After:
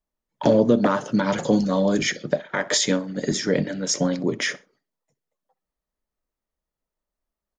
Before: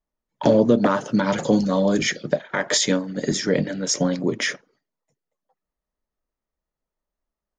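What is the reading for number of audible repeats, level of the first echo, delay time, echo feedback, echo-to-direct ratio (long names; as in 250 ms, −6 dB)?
2, −22.0 dB, 63 ms, 27%, −21.5 dB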